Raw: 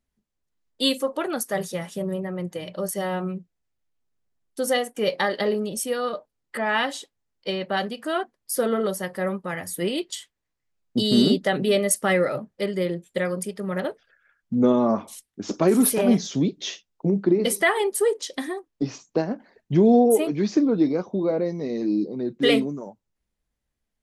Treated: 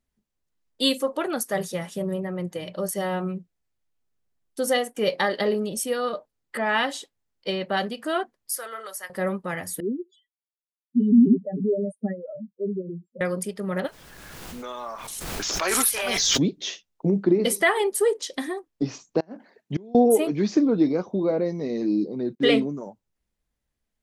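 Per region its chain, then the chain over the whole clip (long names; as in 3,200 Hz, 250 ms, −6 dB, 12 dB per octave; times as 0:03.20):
0:08.55–0:09.10: high-pass filter 1,300 Hz + parametric band 3,500 Hz −8 dB 0.79 octaves
0:09.80–0:13.21: expanding power law on the bin magnitudes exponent 4 + resonant band-pass 260 Hz, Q 1.8 + comb filter 4.7 ms, depth 77%
0:13.86–0:16.38: high-pass filter 1,400 Hz + background noise pink −59 dBFS + background raised ahead of every attack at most 22 dB per second
0:19.20–0:19.95: high-pass filter 170 Hz + gate with flip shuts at −15 dBFS, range −27 dB
0:22.35–0:22.77: downward expander −50 dBFS + high-frequency loss of the air 65 metres
whole clip: no processing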